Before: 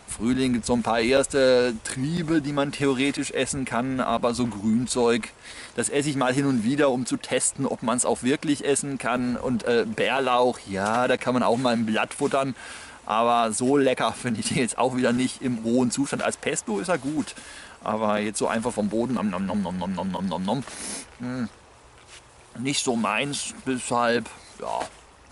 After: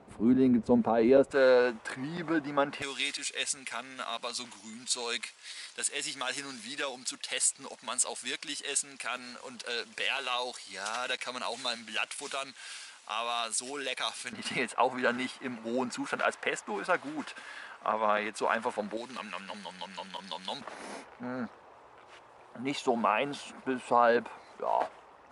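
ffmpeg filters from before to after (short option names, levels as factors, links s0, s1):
-af "asetnsamples=n=441:p=0,asendcmd='1.31 bandpass f 1000;2.82 bandpass f 4800;14.33 bandpass f 1400;18.97 bandpass f 3500;20.61 bandpass f 780',bandpass=f=340:t=q:w=0.81:csg=0"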